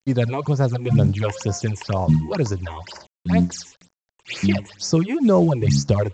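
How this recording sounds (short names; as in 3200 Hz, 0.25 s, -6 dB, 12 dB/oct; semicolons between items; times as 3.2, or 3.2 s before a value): a quantiser's noise floor 8-bit, dither none; phasing stages 8, 2.1 Hz, lowest notch 170–3400 Hz; µ-law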